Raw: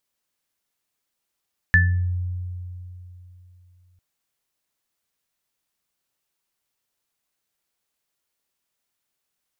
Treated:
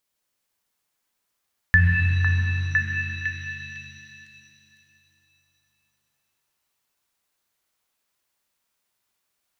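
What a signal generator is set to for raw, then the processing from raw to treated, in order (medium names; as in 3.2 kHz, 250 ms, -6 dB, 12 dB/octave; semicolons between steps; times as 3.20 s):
sine partials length 2.25 s, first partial 89.8 Hz, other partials 174/1750 Hz, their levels -10.5/5 dB, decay 3.21 s, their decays 0.74/0.36 s, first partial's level -14.5 dB
on a send: repeats whose band climbs or falls 505 ms, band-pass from 1 kHz, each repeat 0.7 oct, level -0.5 dB; on the sum: pitch-shifted reverb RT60 2.9 s, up +7 st, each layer -8 dB, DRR 2 dB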